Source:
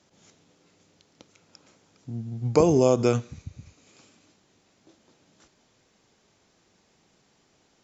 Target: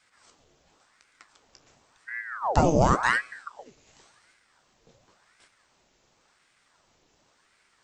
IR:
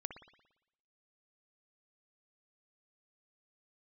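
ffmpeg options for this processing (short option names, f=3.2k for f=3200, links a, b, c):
-af "bandreject=f=65.92:t=h:w=4,bandreject=f=131.84:t=h:w=4,bandreject=f=197.76:t=h:w=4,bandreject=f=263.68:t=h:w=4,bandreject=f=329.6:t=h:w=4,bandreject=f=395.52:t=h:w=4,bandreject=f=461.44:t=h:w=4,bandreject=f=527.36:t=h:w=4,bandreject=f=593.28:t=h:w=4,bandreject=f=659.2:t=h:w=4,bandreject=f=725.12:t=h:w=4,bandreject=f=791.04:t=h:w=4,bandreject=f=856.96:t=h:w=4,bandreject=f=922.88:t=h:w=4,flanger=delay=8.9:depth=6.5:regen=52:speed=1.6:shape=sinusoidal,aeval=exprs='val(0)*sin(2*PI*1000*n/s+1000*0.85/0.92*sin(2*PI*0.92*n/s))':c=same,volume=6dB"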